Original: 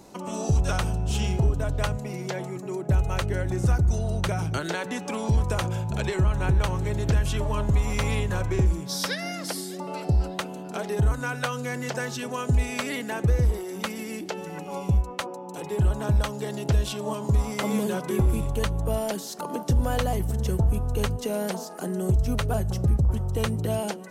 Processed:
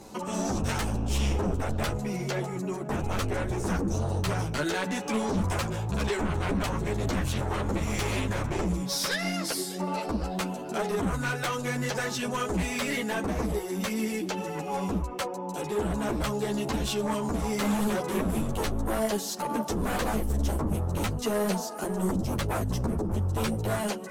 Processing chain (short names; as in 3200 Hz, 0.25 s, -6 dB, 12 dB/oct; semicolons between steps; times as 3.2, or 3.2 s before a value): sine folder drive 10 dB, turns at -14 dBFS; ensemble effect; gain -7.5 dB